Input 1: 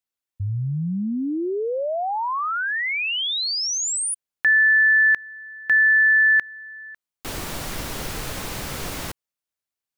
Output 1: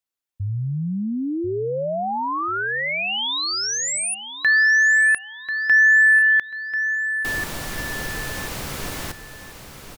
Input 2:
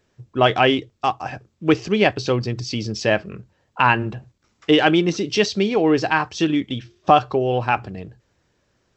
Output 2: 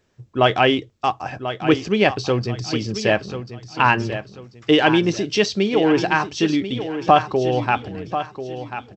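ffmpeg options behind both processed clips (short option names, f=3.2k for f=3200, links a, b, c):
-af "aecho=1:1:1040|2080|3120:0.299|0.0955|0.0306"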